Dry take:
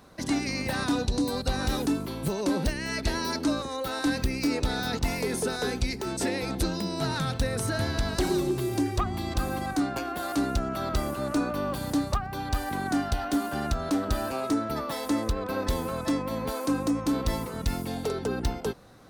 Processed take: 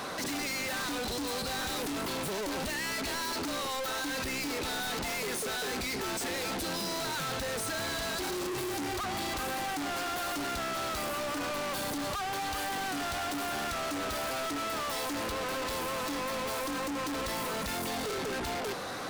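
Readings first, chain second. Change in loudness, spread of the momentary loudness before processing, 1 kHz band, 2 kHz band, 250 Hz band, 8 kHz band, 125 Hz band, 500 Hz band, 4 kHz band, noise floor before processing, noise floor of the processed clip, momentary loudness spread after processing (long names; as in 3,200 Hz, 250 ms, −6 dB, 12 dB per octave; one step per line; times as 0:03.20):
−4.0 dB, 4 LU, −1.5 dB, +0.5 dB, −10.0 dB, +1.5 dB, −13.0 dB, −4.5 dB, +0.5 dB, −36 dBFS, −35 dBFS, 1 LU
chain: mid-hump overdrive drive 30 dB, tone 6,600 Hz, clips at −17 dBFS
soft clipping −33.5 dBFS, distortion −10 dB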